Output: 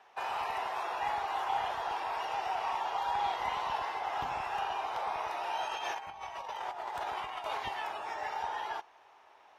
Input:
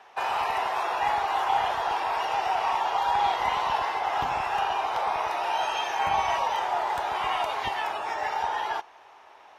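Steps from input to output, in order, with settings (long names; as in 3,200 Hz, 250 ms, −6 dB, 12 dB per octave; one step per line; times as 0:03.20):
0:05.68–0:07.60: compressor whose output falls as the input rises −30 dBFS, ratio −0.5
level −8 dB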